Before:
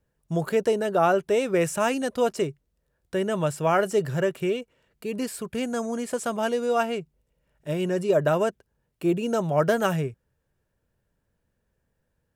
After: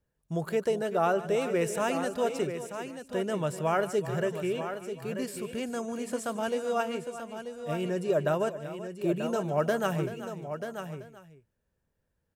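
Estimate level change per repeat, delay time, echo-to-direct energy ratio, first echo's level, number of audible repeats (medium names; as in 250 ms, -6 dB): no regular repeats, 149 ms, -7.0 dB, -16.0 dB, 5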